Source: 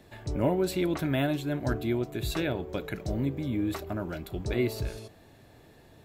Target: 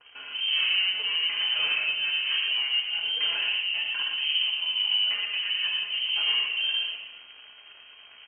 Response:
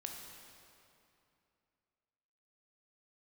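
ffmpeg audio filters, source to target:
-filter_complex "[0:a]highpass=48,lowshelf=f=75:g=4.5,aecho=1:1:5.1:0.96,asplit=2[a][b];[b]acompressor=threshold=-34dB:ratio=6,volume=-2dB[c];[a][c]amix=inputs=2:normalize=0,acrusher=bits=8:dc=4:mix=0:aa=0.000001,atempo=0.73,flanger=delay=1.8:depth=2.6:regen=74:speed=1.8:shape=sinusoidal,asoftclip=type=tanh:threshold=-32dB,aecho=1:1:116:0.562[d];[1:a]atrim=start_sample=2205,atrim=end_sample=3087,asetrate=24696,aresample=44100[e];[d][e]afir=irnorm=-1:irlink=0,lowpass=f=2.7k:t=q:w=0.5098,lowpass=f=2.7k:t=q:w=0.6013,lowpass=f=2.7k:t=q:w=0.9,lowpass=f=2.7k:t=q:w=2.563,afreqshift=-3200,adynamicequalizer=threshold=0.00447:dfrequency=2200:dqfactor=0.7:tfrequency=2200:tqfactor=0.7:attack=5:release=100:ratio=0.375:range=4:mode=boostabove:tftype=highshelf,volume=2.5dB"

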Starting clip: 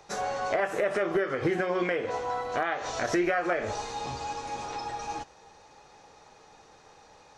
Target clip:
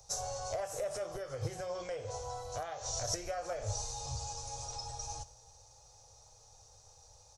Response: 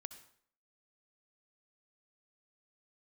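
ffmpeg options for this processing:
-filter_complex "[0:a]firequalizer=gain_entry='entry(110,0);entry(180,-25);entry(360,-28);entry(510,-13);entry(1800,-27);entry(5600,0)':delay=0.05:min_phase=1,asplit=2[a][b];[1:a]atrim=start_sample=2205[c];[b][c]afir=irnorm=-1:irlink=0,volume=1.5dB[d];[a][d]amix=inputs=2:normalize=0,volume=1dB"

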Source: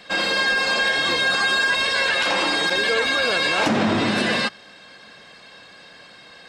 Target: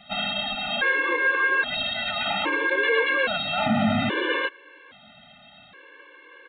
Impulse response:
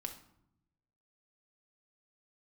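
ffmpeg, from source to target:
-af "aresample=8000,aresample=44100,afftfilt=real='re*gt(sin(2*PI*0.61*pts/sr)*(1-2*mod(floor(b*sr/1024/300),2)),0)':imag='im*gt(sin(2*PI*0.61*pts/sr)*(1-2*mod(floor(b*sr/1024/300),2)),0)':win_size=1024:overlap=0.75"

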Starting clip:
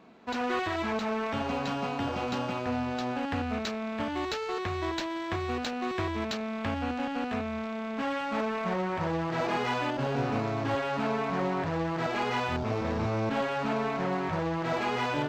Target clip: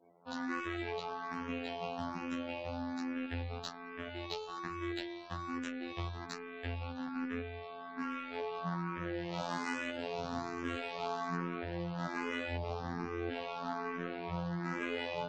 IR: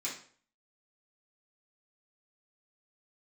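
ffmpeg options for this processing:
-filter_complex "[0:a]asettb=1/sr,asplit=3[a][b][c];[a]atrim=end=9.174[d];[b]atrim=start=9.17:end=11.36,asetpts=PTS-STARTPTS,afade=t=in:d=0.004:c=qsin,afade=t=out:st=2.186:d=0.004:c=qsin,highshelf=f=3.6k:g=7[e];[c]atrim=start=11.356[f];[d][e]acrossfade=d=0.004:c1=hsin:c2=qsin[g];[g][f]acrossfade=d=0.004:c1=qsin:c2=hsin,afftfilt=real='re*gte(hypot(re,im),0.00224)':imag='im*gte(hypot(re,im),0.00224)':win_size=1024:overlap=0.75,afftfilt=real='hypot(re,im)*cos(PI*b)':imag='0':win_size=2048:overlap=0.75,asplit=2[h][i];[i]afreqshift=1.2[j];[h][j]amix=inputs=2:normalize=1,volume=-1.5dB"

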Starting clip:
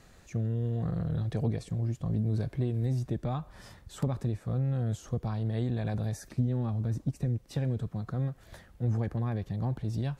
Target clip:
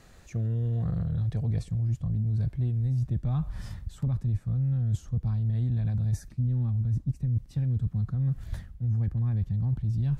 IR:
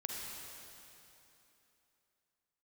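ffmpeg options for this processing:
-af "asubboost=boost=9:cutoff=150,areverse,acompressor=threshold=-26dB:ratio=10,areverse,volume=1.5dB"

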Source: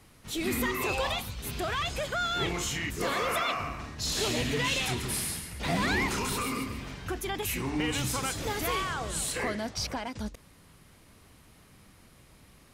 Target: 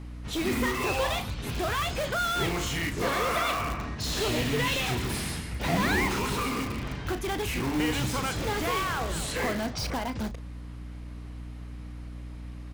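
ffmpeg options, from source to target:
-filter_complex "[0:a]aemphasis=mode=reproduction:type=50fm,aeval=exprs='val(0)+0.00631*(sin(2*PI*60*n/s)+sin(2*PI*2*60*n/s)/2+sin(2*PI*3*60*n/s)/3+sin(2*PI*4*60*n/s)/4+sin(2*PI*5*60*n/s)/5)':c=same,asplit=2[a][b];[b]aeval=exprs='(mod(29.9*val(0)+1,2)-1)/29.9':c=same,volume=-7.5dB[c];[a][c]amix=inputs=2:normalize=0,asplit=2[d][e];[e]adelay=36,volume=-12dB[f];[d][f]amix=inputs=2:normalize=0,volume=2dB"

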